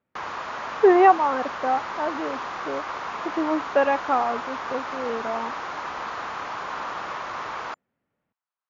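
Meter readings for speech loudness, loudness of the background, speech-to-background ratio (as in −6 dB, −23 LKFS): −23.0 LKFS, −32.0 LKFS, 9.0 dB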